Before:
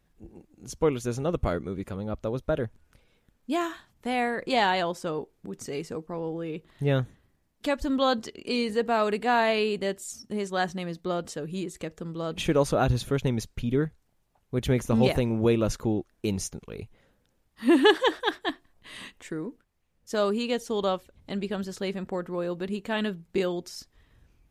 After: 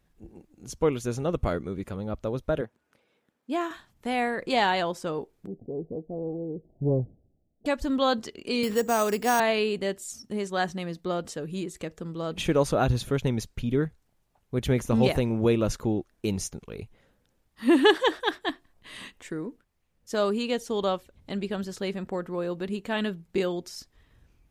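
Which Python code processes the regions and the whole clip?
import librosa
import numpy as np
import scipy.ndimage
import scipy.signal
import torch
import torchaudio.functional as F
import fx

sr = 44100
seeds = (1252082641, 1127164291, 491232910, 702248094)

y = fx.chain(x, sr, fx.highpass(hz=250.0, slope=12),
    fx.high_shelf(hz=3200.0, db=-8.0), at=(2.61, 3.71))
y = fx.chain(y, sr, fx.steep_lowpass(hz=750.0, slope=72),
    fx.doppler_dist(depth_ms=0.31), at=(5.47, 7.66))
y = fx.chain(y, sr, fx.high_shelf(hz=9800.0, db=-3.5),
    fx.resample_bad(factor=6, down='none', up='hold'),
    fx.band_squash(depth_pct=40), at=(8.63, 9.4))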